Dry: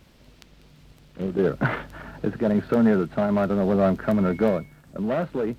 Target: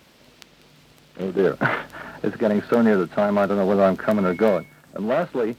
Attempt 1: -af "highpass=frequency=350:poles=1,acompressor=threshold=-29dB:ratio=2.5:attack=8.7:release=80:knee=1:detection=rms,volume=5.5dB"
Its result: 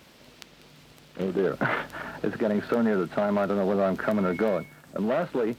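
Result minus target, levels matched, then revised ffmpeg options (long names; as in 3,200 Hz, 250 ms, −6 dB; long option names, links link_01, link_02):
downward compressor: peak gain reduction +8.5 dB
-af "highpass=frequency=350:poles=1,volume=5.5dB"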